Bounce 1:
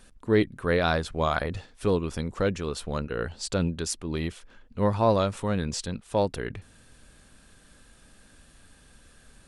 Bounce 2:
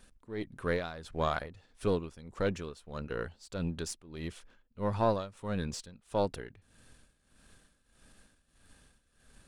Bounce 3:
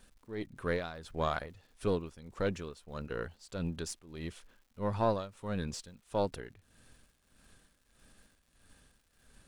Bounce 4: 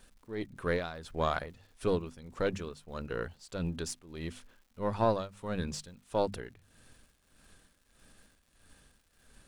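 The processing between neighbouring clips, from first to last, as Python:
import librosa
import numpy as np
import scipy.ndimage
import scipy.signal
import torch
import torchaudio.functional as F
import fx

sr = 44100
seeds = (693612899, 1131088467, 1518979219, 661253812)

y1 = np.where(x < 0.0, 10.0 ** (-3.0 / 20.0) * x, x)
y1 = y1 * (1.0 - 0.82 / 2.0 + 0.82 / 2.0 * np.cos(2.0 * np.pi * 1.6 * (np.arange(len(y1)) / sr)))
y1 = F.gain(torch.from_numpy(y1), -3.5).numpy()
y2 = fx.dmg_crackle(y1, sr, seeds[0], per_s=270.0, level_db=-57.0)
y2 = F.gain(torch.from_numpy(y2), -1.5).numpy()
y3 = fx.hum_notches(y2, sr, base_hz=50, count=5)
y3 = F.gain(torch.from_numpy(y3), 2.0).numpy()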